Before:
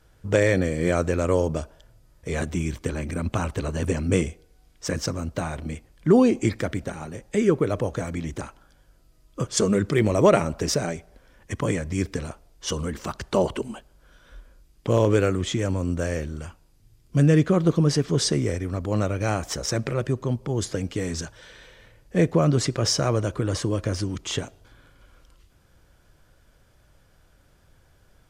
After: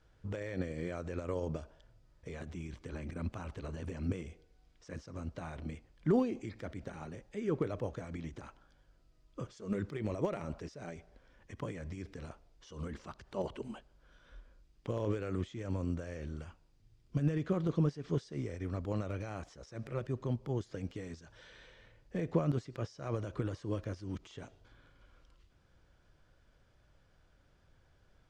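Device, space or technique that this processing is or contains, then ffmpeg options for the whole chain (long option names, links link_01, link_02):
de-esser from a sidechain: -filter_complex "[0:a]lowpass=5500,asplit=2[link_01][link_02];[link_02]highpass=6400,apad=whole_len=1247719[link_03];[link_01][link_03]sidechaincompress=threshold=-55dB:ratio=4:attack=0.74:release=76,volume=-8.5dB"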